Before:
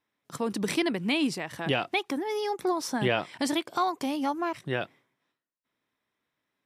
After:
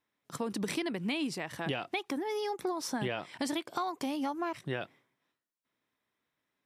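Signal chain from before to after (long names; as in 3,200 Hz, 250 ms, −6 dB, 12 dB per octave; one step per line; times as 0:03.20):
downward compressor, threshold −28 dBFS, peak gain reduction 8 dB
level −2 dB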